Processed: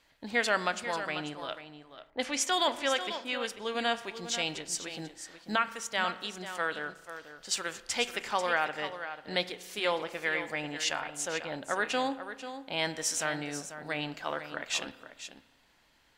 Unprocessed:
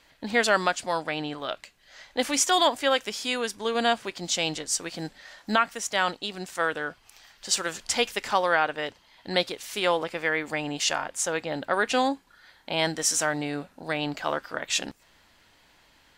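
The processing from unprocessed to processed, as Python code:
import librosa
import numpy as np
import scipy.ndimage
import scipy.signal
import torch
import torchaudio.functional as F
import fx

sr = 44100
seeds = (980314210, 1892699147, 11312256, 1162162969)

y = fx.rev_spring(x, sr, rt60_s=1.2, pass_ms=(33,), chirp_ms=65, drr_db=14.0)
y = fx.env_lowpass(y, sr, base_hz=780.0, full_db=-19.5, at=(1.61, 3.46))
y = y + 10.0 ** (-10.5 / 20.0) * np.pad(y, (int(491 * sr / 1000.0), 0))[:len(y)]
y = fx.dynamic_eq(y, sr, hz=2300.0, q=0.96, threshold_db=-36.0, ratio=4.0, max_db=4)
y = y * librosa.db_to_amplitude(-7.5)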